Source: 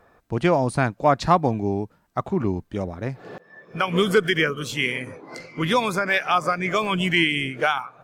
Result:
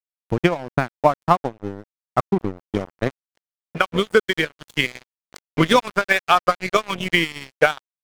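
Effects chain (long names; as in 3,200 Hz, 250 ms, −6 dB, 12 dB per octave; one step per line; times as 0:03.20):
transient designer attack +12 dB, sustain −11 dB
dead-zone distortion −27 dBFS
automatic gain control
level −1 dB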